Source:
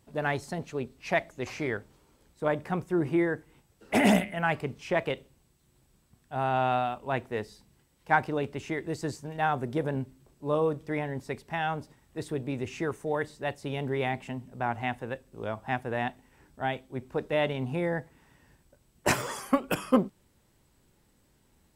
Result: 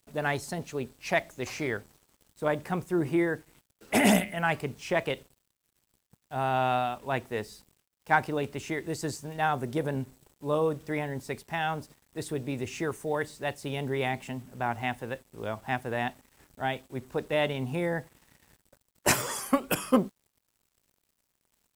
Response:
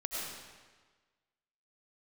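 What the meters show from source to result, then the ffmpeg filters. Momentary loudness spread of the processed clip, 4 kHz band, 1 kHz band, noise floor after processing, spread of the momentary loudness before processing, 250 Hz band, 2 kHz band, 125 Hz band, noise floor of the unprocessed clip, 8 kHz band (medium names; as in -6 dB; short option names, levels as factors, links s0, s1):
11 LU, +2.5 dB, 0.0 dB, -79 dBFS, 11 LU, -0.5 dB, +1.0 dB, -0.5 dB, -67 dBFS, +6.5 dB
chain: -af "aemphasis=mode=production:type=cd,acrusher=bits=8:mix=0:aa=0.5"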